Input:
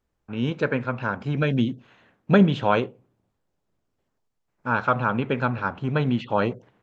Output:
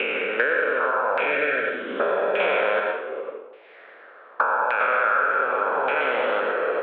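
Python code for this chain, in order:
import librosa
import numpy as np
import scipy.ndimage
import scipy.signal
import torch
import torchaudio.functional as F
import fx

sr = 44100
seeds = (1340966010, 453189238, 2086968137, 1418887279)

y = fx.spec_steps(x, sr, hold_ms=400)
y = fx.peak_eq(y, sr, hz=930.0, db=-10.0, octaves=0.69)
y = fx.filter_lfo_lowpass(y, sr, shape='saw_down', hz=0.85, low_hz=840.0, high_hz=2500.0, q=3.7)
y = scipy.signal.sosfilt(scipy.signal.ellip(3, 1.0, 80, [490.0, 3700.0], 'bandpass', fs=sr, output='sos'), y)
y = fx.rev_plate(y, sr, seeds[0], rt60_s=0.59, hf_ratio=0.85, predelay_ms=80, drr_db=2.0)
y = fx.band_squash(y, sr, depth_pct=100)
y = y * librosa.db_to_amplitude(8.5)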